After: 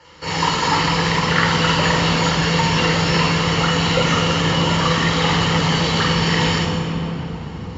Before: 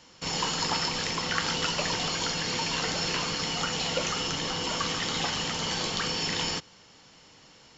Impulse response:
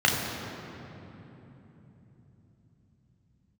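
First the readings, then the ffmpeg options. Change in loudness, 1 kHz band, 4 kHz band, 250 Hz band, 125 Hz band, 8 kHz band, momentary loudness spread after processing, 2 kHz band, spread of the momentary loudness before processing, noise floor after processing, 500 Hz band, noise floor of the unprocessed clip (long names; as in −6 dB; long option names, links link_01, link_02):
+11.0 dB, +13.5 dB, +8.0 dB, +16.5 dB, +19.5 dB, can't be measured, 6 LU, +12.5 dB, 2 LU, −31 dBFS, +13.5 dB, −55 dBFS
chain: -filter_complex "[1:a]atrim=start_sample=2205,asetrate=28224,aresample=44100[link_01];[0:a][link_01]afir=irnorm=-1:irlink=0,volume=-7.5dB"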